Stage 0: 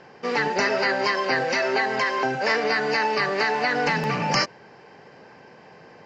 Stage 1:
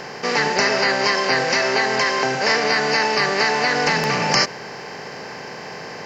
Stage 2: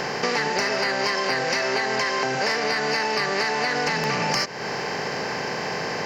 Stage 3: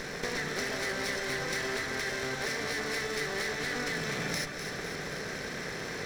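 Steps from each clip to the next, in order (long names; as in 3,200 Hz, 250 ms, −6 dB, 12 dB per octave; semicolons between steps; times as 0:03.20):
compressor on every frequency bin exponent 0.6; high-shelf EQ 5,300 Hz +10.5 dB
in parallel at −10.5 dB: wave folding −12.5 dBFS; on the sum: downward compressor 6 to 1, threshold −25 dBFS, peak gain reduction 12.5 dB; level +3.5 dB
lower of the sound and its delayed copy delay 0.52 ms; delay that swaps between a low-pass and a high-pass 126 ms, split 1,400 Hz, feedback 78%, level −6 dB; level −9 dB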